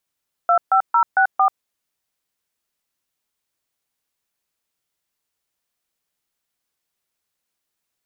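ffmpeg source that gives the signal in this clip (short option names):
-f lavfi -i "aevalsrc='0.188*clip(min(mod(t,0.226),0.088-mod(t,0.226))/0.002,0,1)*(eq(floor(t/0.226),0)*(sin(2*PI*697*mod(t,0.226))+sin(2*PI*1336*mod(t,0.226)))+eq(floor(t/0.226),1)*(sin(2*PI*770*mod(t,0.226))+sin(2*PI*1336*mod(t,0.226)))+eq(floor(t/0.226),2)*(sin(2*PI*941*mod(t,0.226))+sin(2*PI*1336*mod(t,0.226)))+eq(floor(t/0.226),3)*(sin(2*PI*770*mod(t,0.226))+sin(2*PI*1477*mod(t,0.226)))+eq(floor(t/0.226),4)*(sin(2*PI*770*mod(t,0.226))+sin(2*PI*1209*mod(t,0.226))))':d=1.13:s=44100"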